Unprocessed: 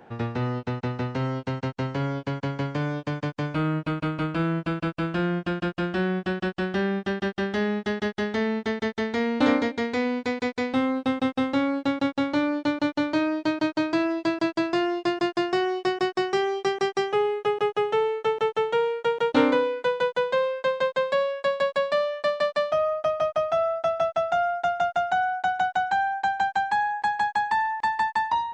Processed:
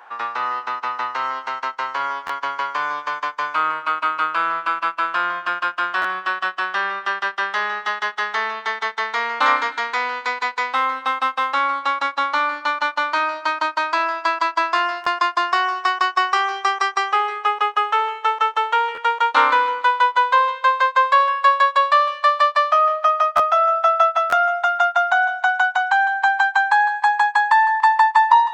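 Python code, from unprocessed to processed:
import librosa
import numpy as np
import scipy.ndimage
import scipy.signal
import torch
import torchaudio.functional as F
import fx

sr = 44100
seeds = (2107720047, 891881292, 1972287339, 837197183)

y = fx.highpass_res(x, sr, hz=1100.0, q=3.8)
y = fx.echo_feedback(y, sr, ms=156, feedback_pct=43, wet_db=-14.0)
y = fx.buffer_glitch(y, sr, at_s=(2.26, 6.01, 15.03, 18.94, 23.36, 24.29), block=512, repeats=2)
y = y * librosa.db_to_amplitude(5.5)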